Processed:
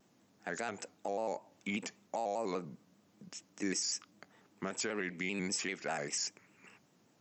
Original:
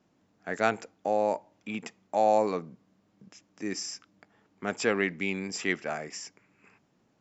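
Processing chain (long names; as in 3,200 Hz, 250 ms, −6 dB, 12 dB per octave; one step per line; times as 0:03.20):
high-pass filter 100 Hz
high-shelf EQ 5,000 Hz +11 dB
downward compressor 6 to 1, threshold −30 dBFS, peak gain reduction 11.5 dB
brickwall limiter −25.5 dBFS, peak gain reduction 7.5 dB
pitch modulation by a square or saw wave square 5.1 Hz, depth 100 cents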